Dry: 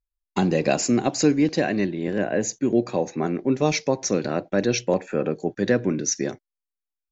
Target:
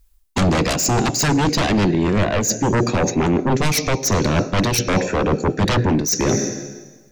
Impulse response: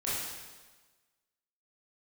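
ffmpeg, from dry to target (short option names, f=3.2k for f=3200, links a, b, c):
-filter_complex "[0:a]asplit=2[a][b];[1:a]atrim=start_sample=2205,adelay=72[c];[b][c]afir=irnorm=-1:irlink=0,volume=-25dB[d];[a][d]amix=inputs=2:normalize=0,aeval=exprs='0.501*sin(PI/2*5.62*val(0)/0.501)':c=same,highshelf=f=5.2k:g=8.5,areverse,acompressor=threshold=-22dB:ratio=12,areverse,aeval=exprs='0.2*(cos(1*acos(clip(val(0)/0.2,-1,1)))-cos(1*PI/2))+0.00316*(cos(7*acos(clip(val(0)/0.2,-1,1)))-cos(7*PI/2))':c=same,lowshelf=f=230:g=9,volume=3.5dB"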